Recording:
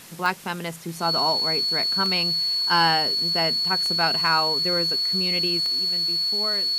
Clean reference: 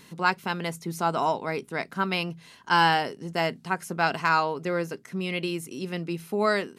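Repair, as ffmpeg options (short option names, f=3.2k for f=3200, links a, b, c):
-af "adeclick=t=4,bandreject=f=4.4k:w=30,afwtdn=0.0063,asetnsamples=n=441:p=0,asendcmd='5.6 volume volume 9.5dB',volume=0dB"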